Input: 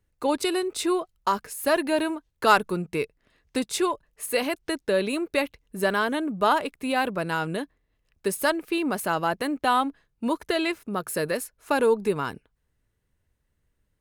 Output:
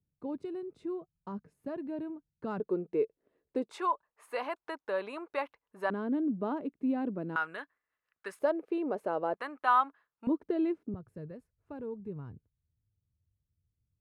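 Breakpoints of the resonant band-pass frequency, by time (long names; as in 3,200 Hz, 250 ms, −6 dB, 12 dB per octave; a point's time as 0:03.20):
resonant band-pass, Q 2.2
160 Hz
from 0:02.60 420 Hz
from 0:03.71 1,000 Hz
from 0:05.90 260 Hz
from 0:07.36 1,400 Hz
from 0:08.39 490 Hz
from 0:09.34 1,200 Hz
from 0:10.27 290 Hz
from 0:10.94 100 Hz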